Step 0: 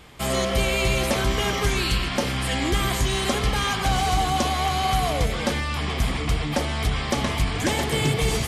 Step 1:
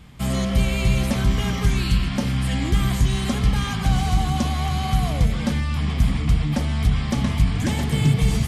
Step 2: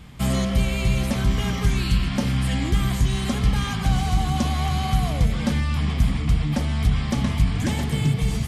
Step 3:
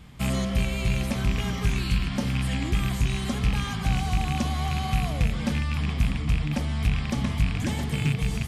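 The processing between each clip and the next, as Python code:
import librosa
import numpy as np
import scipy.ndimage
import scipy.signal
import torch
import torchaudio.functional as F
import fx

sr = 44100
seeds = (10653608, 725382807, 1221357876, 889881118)

y1 = fx.low_shelf_res(x, sr, hz=280.0, db=9.5, q=1.5)
y1 = F.gain(torch.from_numpy(y1), -4.5).numpy()
y2 = fx.rider(y1, sr, range_db=10, speed_s=0.5)
y2 = F.gain(torch.from_numpy(y2), -1.0).numpy()
y3 = fx.rattle_buzz(y2, sr, strikes_db=-18.0, level_db=-17.0)
y3 = F.gain(torch.from_numpy(y3), -4.0).numpy()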